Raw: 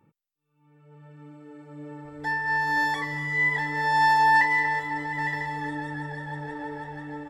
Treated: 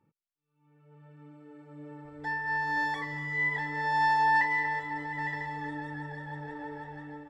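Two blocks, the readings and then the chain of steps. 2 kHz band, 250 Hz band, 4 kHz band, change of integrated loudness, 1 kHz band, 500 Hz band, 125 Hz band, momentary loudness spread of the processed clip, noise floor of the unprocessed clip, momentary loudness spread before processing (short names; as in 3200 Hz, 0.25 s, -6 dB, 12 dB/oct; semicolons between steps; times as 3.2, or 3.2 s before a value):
-5.5 dB, -5.0 dB, -7.5 dB, -5.5 dB, -5.0 dB, -5.0 dB, -5.0 dB, 18 LU, -76 dBFS, 18 LU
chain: high shelf 7700 Hz -11.5 dB; AGC gain up to 3.5 dB; gain -8.5 dB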